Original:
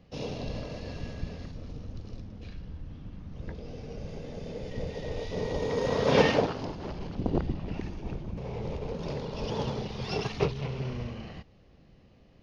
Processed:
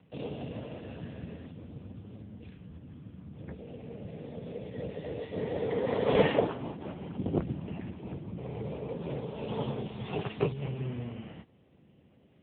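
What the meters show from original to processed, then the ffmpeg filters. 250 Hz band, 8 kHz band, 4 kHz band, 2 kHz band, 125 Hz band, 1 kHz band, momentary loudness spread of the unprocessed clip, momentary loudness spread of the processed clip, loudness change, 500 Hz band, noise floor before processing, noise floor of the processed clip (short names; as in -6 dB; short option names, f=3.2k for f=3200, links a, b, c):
-1.5 dB, n/a, -6.5 dB, -5.0 dB, -2.5 dB, -4.0 dB, 16 LU, 17 LU, -2.0 dB, -1.5 dB, -57 dBFS, -62 dBFS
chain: -ar 8000 -c:a libopencore_amrnb -b:a 6700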